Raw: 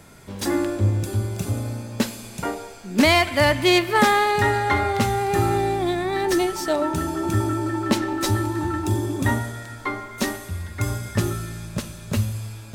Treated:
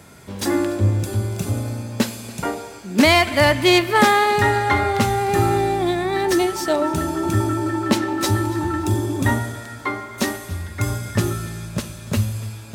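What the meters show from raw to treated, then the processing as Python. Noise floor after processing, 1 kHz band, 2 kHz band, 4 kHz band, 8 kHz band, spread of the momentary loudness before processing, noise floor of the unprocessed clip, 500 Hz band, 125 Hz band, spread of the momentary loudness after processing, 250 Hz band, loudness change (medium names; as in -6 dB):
-37 dBFS, +2.5 dB, +2.5 dB, +2.5 dB, +2.5 dB, 14 LU, -40 dBFS, +2.5 dB, +2.0 dB, 14 LU, +2.5 dB, +2.5 dB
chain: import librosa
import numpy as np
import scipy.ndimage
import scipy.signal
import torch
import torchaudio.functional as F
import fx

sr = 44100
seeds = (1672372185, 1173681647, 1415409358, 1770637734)

p1 = scipy.signal.sosfilt(scipy.signal.butter(2, 54.0, 'highpass', fs=sr, output='sos'), x)
p2 = p1 + fx.echo_feedback(p1, sr, ms=286, feedback_pct=39, wet_db=-20.5, dry=0)
y = p2 * 10.0 ** (2.5 / 20.0)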